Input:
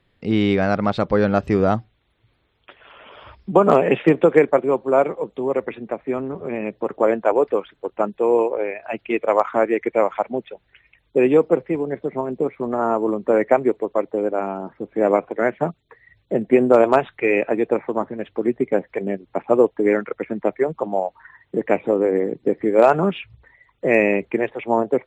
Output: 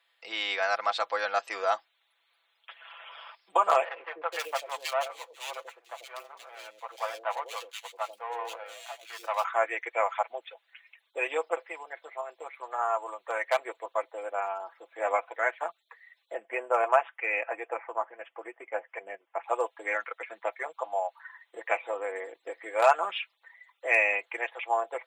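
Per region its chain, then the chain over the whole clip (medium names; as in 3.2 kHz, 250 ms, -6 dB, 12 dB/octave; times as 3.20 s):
3.84–9.44 s: median filter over 25 samples + peaking EQ 260 Hz -10.5 dB 1.9 oct + three bands offset in time mids, lows, highs 90/480 ms, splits 460/2300 Hz
11.71–13.59 s: high-pass 540 Hz 6 dB/octave + hard clipper -9.5 dBFS
16.35–19.43 s: Butterworth band-stop 4.2 kHz, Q 1.5 + treble shelf 2.9 kHz -9 dB
whole clip: high-pass 710 Hz 24 dB/octave; treble shelf 3.3 kHz +8.5 dB; comb 6 ms, depth 62%; trim -5 dB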